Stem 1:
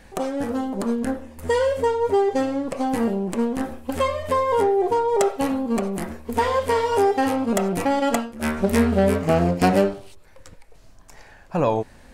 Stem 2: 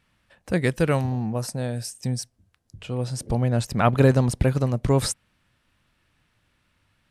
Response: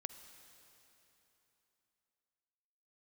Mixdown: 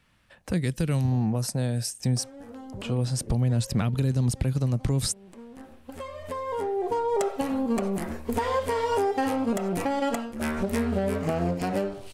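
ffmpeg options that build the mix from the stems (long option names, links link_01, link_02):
-filter_complex "[0:a]acompressor=threshold=-25dB:ratio=3,adelay=2000,volume=1.5dB[link_01];[1:a]acrossover=split=280|3000[link_02][link_03][link_04];[link_03]acompressor=threshold=-34dB:ratio=6[link_05];[link_02][link_05][link_04]amix=inputs=3:normalize=0,volume=2.5dB,asplit=2[link_06][link_07];[link_07]apad=whole_len=623361[link_08];[link_01][link_08]sidechaincompress=threshold=-42dB:ratio=5:attack=16:release=1180[link_09];[link_09][link_06]amix=inputs=2:normalize=0,alimiter=limit=-15.5dB:level=0:latency=1:release=173"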